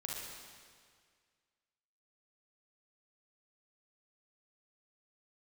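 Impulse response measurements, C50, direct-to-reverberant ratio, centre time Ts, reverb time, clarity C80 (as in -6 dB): -2.0 dB, -3.5 dB, 115 ms, 1.9 s, 1.0 dB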